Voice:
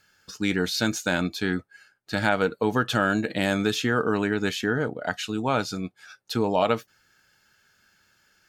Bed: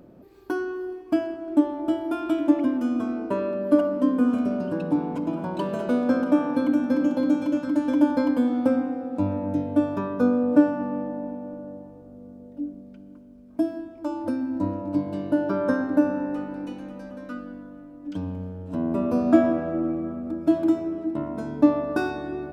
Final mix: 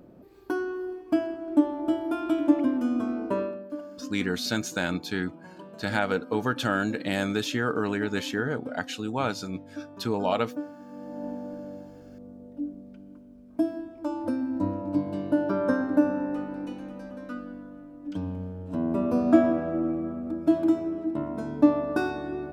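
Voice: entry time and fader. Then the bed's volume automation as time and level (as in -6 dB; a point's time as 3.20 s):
3.70 s, -3.5 dB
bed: 3.41 s -1.5 dB
3.72 s -17.5 dB
10.85 s -17.5 dB
11.27 s -1.5 dB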